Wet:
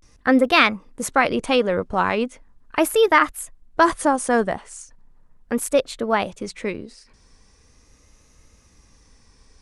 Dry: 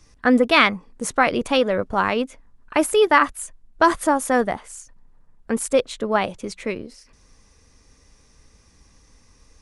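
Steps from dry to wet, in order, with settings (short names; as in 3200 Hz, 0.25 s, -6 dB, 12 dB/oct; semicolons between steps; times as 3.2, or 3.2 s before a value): vibrato 0.39 Hz 91 cents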